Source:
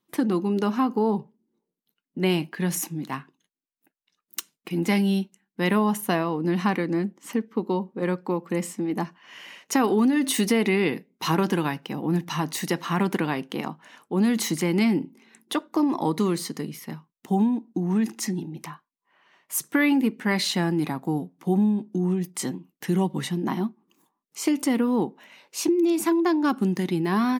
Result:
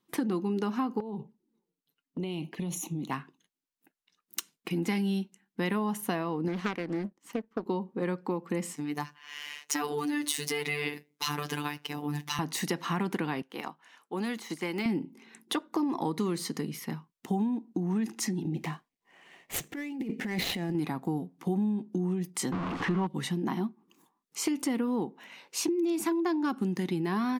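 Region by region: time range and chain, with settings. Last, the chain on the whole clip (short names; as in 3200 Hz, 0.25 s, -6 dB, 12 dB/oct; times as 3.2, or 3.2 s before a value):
1–3.11 compressor 16:1, threshold -28 dBFS + envelope flanger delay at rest 7.5 ms, full sweep at -33.5 dBFS
6.48–7.66 power-law curve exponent 1.4 + Doppler distortion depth 0.44 ms
8.76–12.39 median filter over 3 samples + tilt +2.5 dB/oct + robotiser 147 Hz
13.42–14.86 HPF 690 Hz 6 dB/oct + de-esser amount 85% + upward expander, over -43 dBFS
18.45–20.75 median filter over 9 samples + band shelf 1200 Hz -8.5 dB 1 oct + negative-ratio compressor -28 dBFS, ratio -0.5
22.52–23.07 zero-crossing step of -27 dBFS + LPF 2900 Hz + bell 1100 Hz +10.5 dB 0.6 oct
whole clip: high shelf 12000 Hz -4.5 dB; notch 600 Hz, Q 12; compressor 2.5:1, threshold -31 dBFS; gain +1 dB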